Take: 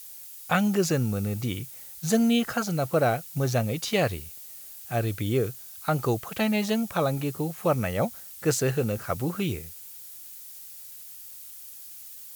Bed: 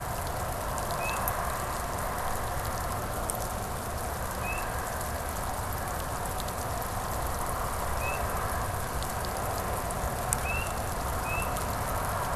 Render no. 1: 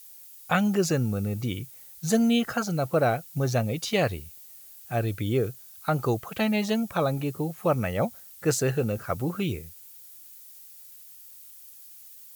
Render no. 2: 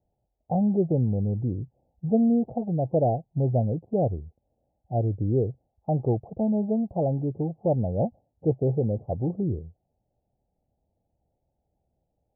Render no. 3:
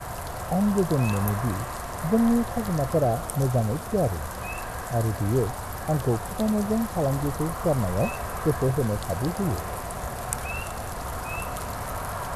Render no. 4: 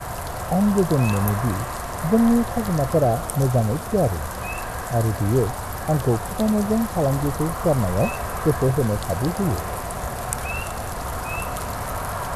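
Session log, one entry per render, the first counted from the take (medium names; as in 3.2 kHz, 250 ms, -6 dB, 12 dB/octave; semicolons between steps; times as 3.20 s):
noise reduction 6 dB, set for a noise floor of -44 dBFS
steep low-pass 810 Hz 72 dB/octave; peaking EQ 70 Hz +4.5 dB 2.3 oct
add bed -1 dB
trim +4 dB; peak limiter -3 dBFS, peak gain reduction 2 dB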